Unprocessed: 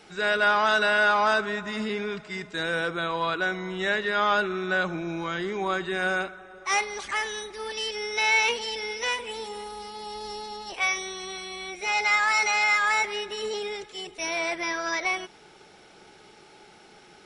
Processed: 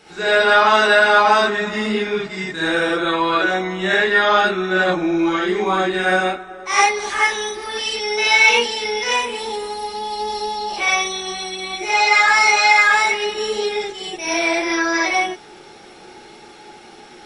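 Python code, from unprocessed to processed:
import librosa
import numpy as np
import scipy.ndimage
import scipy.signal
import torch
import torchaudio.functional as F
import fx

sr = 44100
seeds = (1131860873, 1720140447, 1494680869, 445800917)

y = fx.rev_gated(x, sr, seeds[0], gate_ms=110, shape='rising', drr_db=-7.5)
y = y * librosa.db_to_amplitude(1.5)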